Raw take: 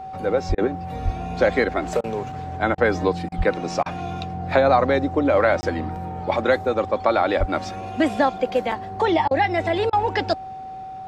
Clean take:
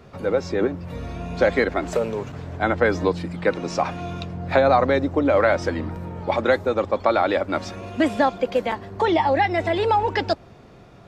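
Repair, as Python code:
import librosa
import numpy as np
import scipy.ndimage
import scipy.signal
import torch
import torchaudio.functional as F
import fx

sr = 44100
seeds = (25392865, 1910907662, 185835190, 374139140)

y = fx.notch(x, sr, hz=760.0, q=30.0)
y = fx.fix_deplosive(y, sr, at_s=(0.48, 1.04, 3.37, 7.39))
y = fx.fix_interpolate(y, sr, at_s=(5.61,), length_ms=20.0)
y = fx.fix_interpolate(y, sr, at_s=(0.55, 2.01, 2.75, 3.29, 3.83, 9.28, 9.9), length_ms=28.0)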